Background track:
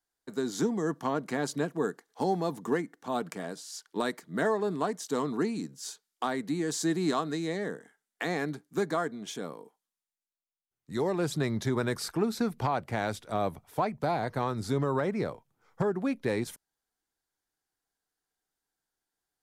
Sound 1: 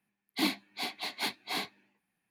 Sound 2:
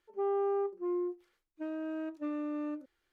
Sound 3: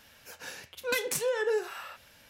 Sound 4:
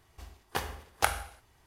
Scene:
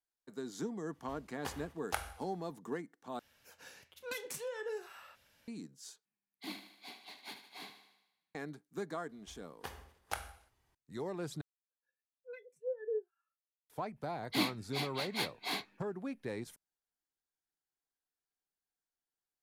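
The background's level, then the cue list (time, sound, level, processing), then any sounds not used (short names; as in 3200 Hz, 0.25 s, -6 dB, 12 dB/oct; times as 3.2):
background track -11 dB
0.9 add 4 -10 dB, fades 0.05 s
3.19 replace with 3 -12 dB
6.05 replace with 1 -15 dB + thinning echo 76 ms, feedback 58%, high-pass 240 Hz, level -9.5 dB
9.09 add 4 -12.5 dB
11.41 replace with 3 -12 dB + spectral expander 2.5:1
13.96 add 1 -3 dB
not used: 2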